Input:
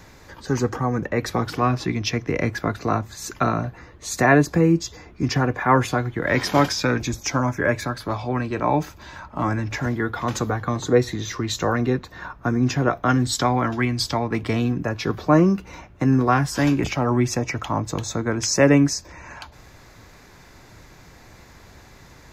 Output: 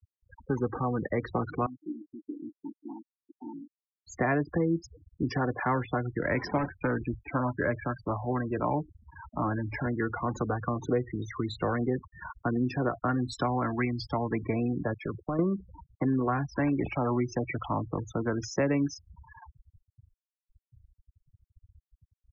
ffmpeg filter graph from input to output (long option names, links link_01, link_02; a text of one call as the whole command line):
ffmpeg -i in.wav -filter_complex "[0:a]asettb=1/sr,asplit=3[link_01][link_02][link_03];[link_01]atrim=end=1.664[link_04];[link_02]atrim=start=1.66:end=4.07,asetpts=PTS-STARTPTS,afade=type=in:duration=0.004:curve=qsin,afade=type=out:start_time=2.406:duration=0.004:curve=qsin,aeval=exprs='(tanh(5.01*val(0)+0.3)-tanh(0.3))/5.01':channel_layout=same,asplit=3[link_05][link_06][link_07];[link_05]bandpass=frequency=300:width_type=q:width=8,volume=0dB[link_08];[link_06]bandpass=frequency=870:width_type=q:width=8,volume=-6dB[link_09];[link_07]bandpass=frequency=2240:width_type=q:width=8,volume=-9dB[link_10];[link_08][link_09][link_10]amix=inputs=3:normalize=0[link_11];[link_03]atrim=start=4.066[link_12];[link_04][link_11]acrossfade=duration=0.004:curve1=hsin:curve2=qsin[link_13];[link_13][link_12]acrossfade=duration=0.004:curve1=qsin:curve2=hsin,asettb=1/sr,asplit=3[link_14][link_15][link_16];[link_14]atrim=end=6.584[link_17];[link_15]atrim=start=6.58:end=7.35,asetpts=PTS-STARTPTS,afade=type=in:duration=0.004:curve=qsin,afade=type=out:start_time=0.766:duration=0.004:curve=qsin,lowpass=2400,volume=15dB,asoftclip=hard,volume=-15dB[link_18];[link_16]atrim=start=7.346[link_19];[link_17][link_18]acrossfade=duration=0.004:curve1=hsin:curve2=qsin[link_20];[link_20][link_19]acrossfade=duration=0.004:curve1=qsin:curve2=hsin,asettb=1/sr,asplit=3[link_21][link_22][link_23];[link_21]atrim=end=14.944[link_24];[link_22]atrim=start=14.94:end=15.39,asetpts=PTS-STARTPTS,afade=type=in:duration=0.004:curve=qsin,afade=type=out:start_time=0.446:duration=0.004:curve=qsin,agate=range=-33dB:threshold=-29dB:ratio=3:release=100:detection=peak,acompressor=threshold=-22dB:ratio=6:attack=3.2:release=140:knee=1:detection=peak,aeval=exprs='clip(val(0),-1,0.0562)':channel_layout=same[link_25];[link_23]atrim=start=15.386[link_26];[link_24][link_25]acrossfade=duration=0.004:curve1=hsin:curve2=qsin[link_27];[link_27][link_26]acrossfade=duration=0.004:curve1=qsin:curve2=hsin,highshelf=frequency=3400:gain=-12,afftfilt=real='re*gte(hypot(re,im),0.0447)':imag='im*gte(hypot(re,im),0.0447)':win_size=1024:overlap=0.75,acrossover=split=250|3000[link_28][link_29][link_30];[link_28]acompressor=threshold=-29dB:ratio=4[link_31];[link_29]acompressor=threshold=-23dB:ratio=4[link_32];[link_30]acompressor=threshold=-36dB:ratio=4[link_33];[link_31][link_32][link_33]amix=inputs=3:normalize=0,volume=-3.5dB" out.wav